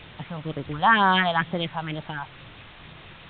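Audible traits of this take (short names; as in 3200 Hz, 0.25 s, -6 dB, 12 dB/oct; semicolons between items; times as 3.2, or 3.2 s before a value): phasing stages 4, 2.1 Hz, lowest notch 330–2800 Hz; a quantiser's noise floor 8-bit, dither triangular; A-law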